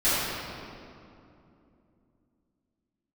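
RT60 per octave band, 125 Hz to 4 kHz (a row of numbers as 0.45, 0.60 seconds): 3.7, 3.9, 2.9, 2.5, 2.0, 1.6 seconds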